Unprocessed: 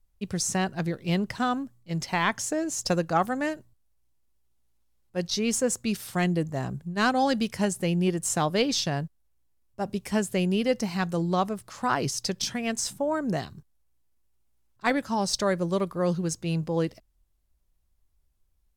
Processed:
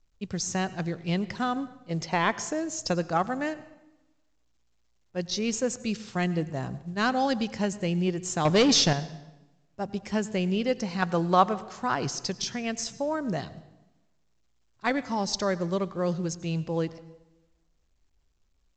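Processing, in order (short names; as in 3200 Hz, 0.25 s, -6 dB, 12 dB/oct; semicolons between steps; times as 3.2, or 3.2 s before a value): 1.56–2.43 bell 500 Hz +7.5 dB 1.2 oct; 8.45–8.93 sample leveller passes 3; 11.02–11.61 bell 1300 Hz +10 dB 2.8 oct; reverb RT60 1.0 s, pre-delay 83 ms, DRR 16.5 dB; gain -2 dB; µ-law 128 kbps 16000 Hz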